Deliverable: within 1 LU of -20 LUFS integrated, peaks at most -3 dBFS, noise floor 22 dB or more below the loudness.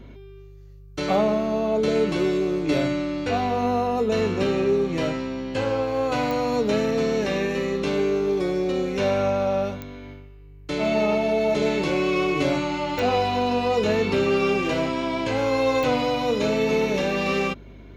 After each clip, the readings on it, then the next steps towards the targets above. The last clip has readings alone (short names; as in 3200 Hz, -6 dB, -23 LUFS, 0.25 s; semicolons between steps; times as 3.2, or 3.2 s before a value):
clicks 4; hum 50 Hz; harmonics up to 150 Hz; hum level -42 dBFS; loudness -23.0 LUFS; peak -10.0 dBFS; loudness target -20.0 LUFS
-> de-click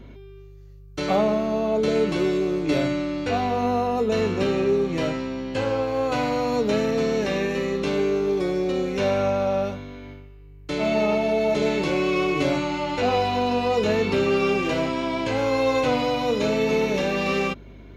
clicks 0; hum 50 Hz; harmonics up to 150 Hz; hum level -42 dBFS
-> de-hum 50 Hz, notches 3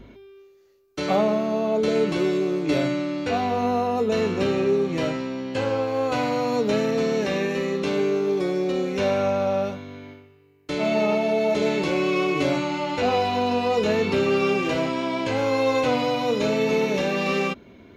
hum none; loudness -23.5 LUFS; peak -10.5 dBFS; loudness target -20.0 LUFS
-> gain +3.5 dB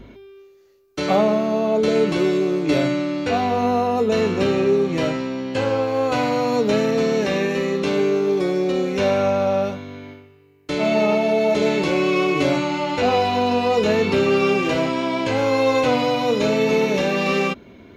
loudness -20.0 LUFS; peak -7.0 dBFS; noise floor -48 dBFS